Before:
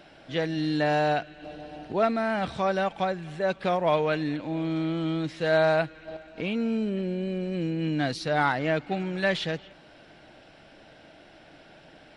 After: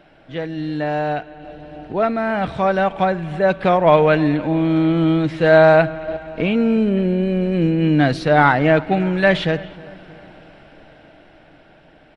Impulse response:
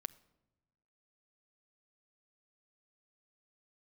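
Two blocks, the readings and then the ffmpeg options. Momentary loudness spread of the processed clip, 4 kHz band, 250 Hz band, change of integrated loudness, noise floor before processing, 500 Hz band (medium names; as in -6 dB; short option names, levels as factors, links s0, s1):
14 LU, +4.5 dB, +10.5 dB, +10.0 dB, -53 dBFS, +10.0 dB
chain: -filter_complex "[0:a]dynaudnorm=f=450:g=11:m=3.98,asplit=2[s0][s1];[s1]adelay=314,lowpass=f=2000:p=1,volume=0.1,asplit=2[s2][s3];[s3]adelay=314,lowpass=f=2000:p=1,volume=0.52,asplit=2[s4][s5];[s5]adelay=314,lowpass=f=2000:p=1,volume=0.52,asplit=2[s6][s7];[s7]adelay=314,lowpass=f=2000:p=1,volume=0.52[s8];[s0][s2][s4][s6][s8]amix=inputs=5:normalize=0,asplit=2[s9][s10];[1:a]atrim=start_sample=2205,lowpass=3300,lowshelf=f=63:g=11[s11];[s10][s11]afir=irnorm=-1:irlink=0,volume=2.11[s12];[s9][s12]amix=inputs=2:normalize=0,volume=0.473"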